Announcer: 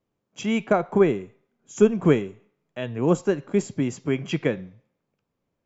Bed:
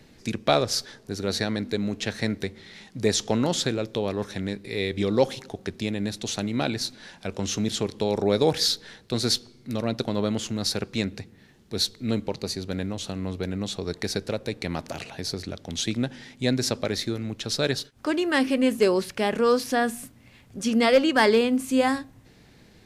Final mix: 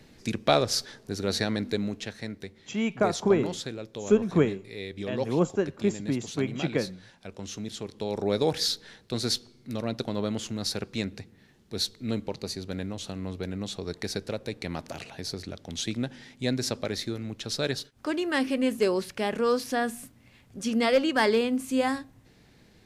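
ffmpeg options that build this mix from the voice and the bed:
-filter_complex "[0:a]adelay=2300,volume=-4dB[a];[1:a]volume=5dB,afade=t=out:st=1.73:d=0.41:silence=0.354813,afade=t=in:st=7.82:d=0.51:silence=0.501187[b];[a][b]amix=inputs=2:normalize=0"

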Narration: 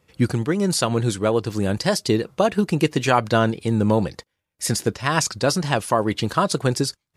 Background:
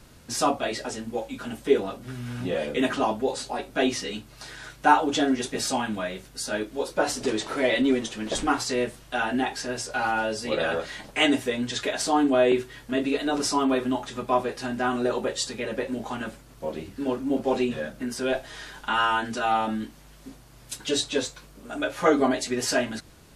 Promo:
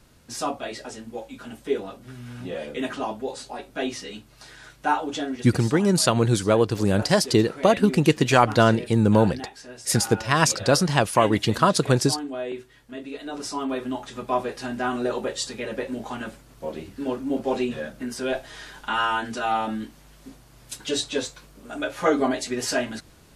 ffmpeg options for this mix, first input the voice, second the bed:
-filter_complex "[0:a]adelay=5250,volume=1dB[a];[1:a]volume=6dB,afade=t=out:st=5.12:d=0.42:silence=0.473151,afade=t=in:st=13.06:d=1.41:silence=0.298538[b];[a][b]amix=inputs=2:normalize=0"

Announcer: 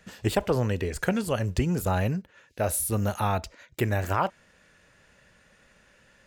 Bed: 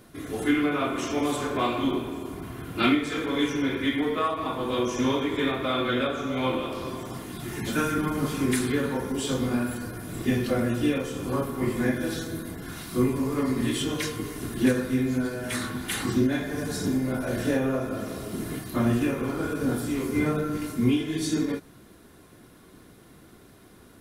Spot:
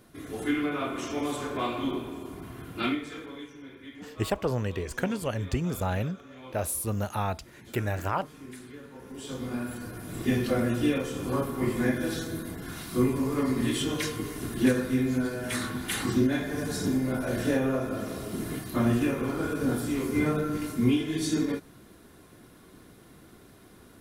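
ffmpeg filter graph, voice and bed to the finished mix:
-filter_complex "[0:a]adelay=3950,volume=-3.5dB[a];[1:a]volume=14dB,afade=t=out:st=2.63:d=0.84:silence=0.177828,afade=t=in:st=8.92:d=1.43:silence=0.11885[b];[a][b]amix=inputs=2:normalize=0"

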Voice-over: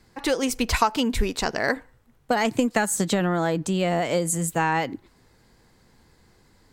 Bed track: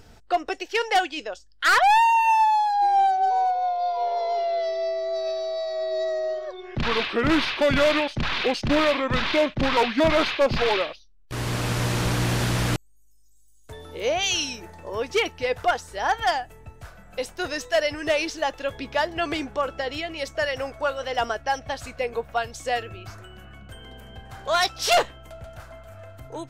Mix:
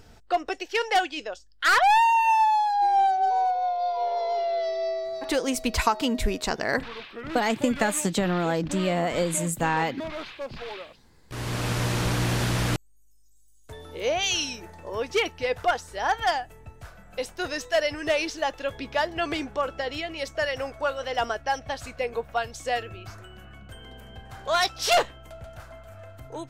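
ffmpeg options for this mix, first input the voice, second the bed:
-filter_complex "[0:a]adelay=5050,volume=-2dB[a];[1:a]volume=12dB,afade=t=out:st=4.93:d=0.43:silence=0.211349,afade=t=in:st=10.86:d=0.81:silence=0.211349[b];[a][b]amix=inputs=2:normalize=0"

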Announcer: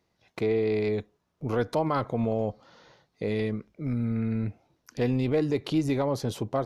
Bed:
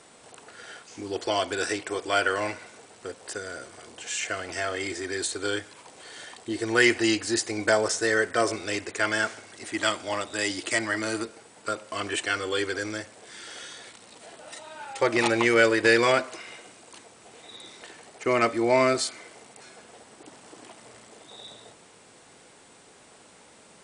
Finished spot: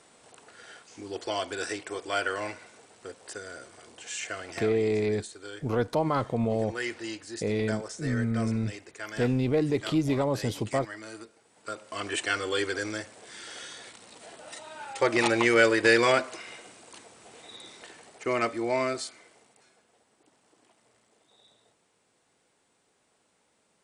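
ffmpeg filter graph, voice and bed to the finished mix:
-filter_complex "[0:a]adelay=4200,volume=0dB[a];[1:a]volume=7.5dB,afade=t=out:st=4.49:d=0.25:silence=0.375837,afade=t=in:st=11.42:d=0.83:silence=0.237137,afade=t=out:st=17.4:d=2.44:silence=0.158489[b];[a][b]amix=inputs=2:normalize=0"

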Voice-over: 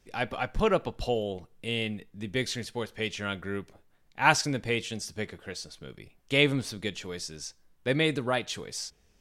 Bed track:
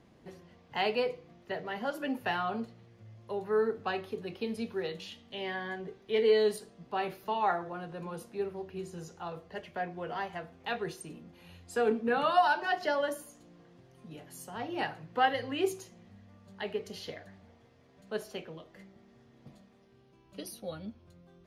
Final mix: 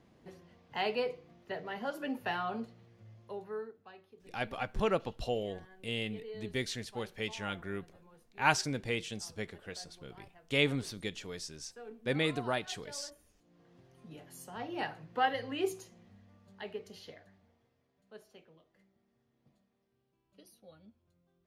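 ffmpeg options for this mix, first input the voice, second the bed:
-filter_complex "[0:a]adelay=4200,volume=-5.5dB[a];[1:a]volume=14.5dB,afade=t=out:st=3.11:d=0.62:silence=0.133352,afade=t=in:st=13.35:d=0.44:silence=0.133352,afade=t=out:st=15.78:d=2.21:silence=0.211349[b];[a][b]amix=inputs=2:normalize=0"

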